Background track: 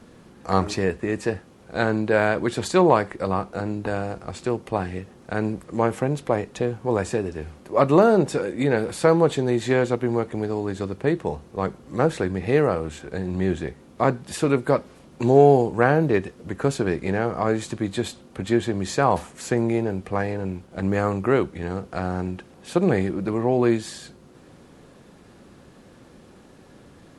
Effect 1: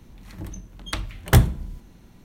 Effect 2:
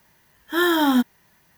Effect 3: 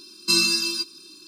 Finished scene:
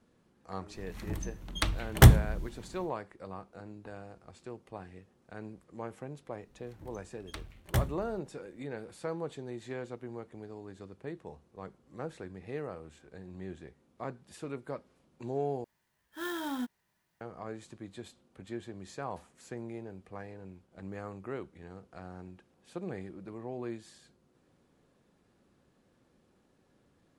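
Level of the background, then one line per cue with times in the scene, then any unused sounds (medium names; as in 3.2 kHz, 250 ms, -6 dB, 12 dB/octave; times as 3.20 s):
background track -19.5 dB
0.69 s: add 1 -1 dB, fades 0.10 s
6.41 s: add 1 -14 dB + companding laws mixed up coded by A
15.64 s: replace with 2 -17.5 dB + sampling jitter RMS 0.026 ms
not used: 3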